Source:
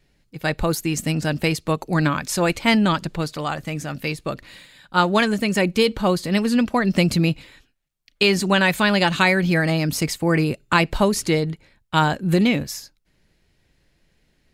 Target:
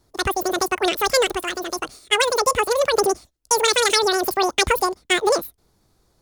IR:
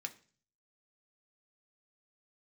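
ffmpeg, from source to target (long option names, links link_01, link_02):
-af "asetrate=103194,aresample=44100"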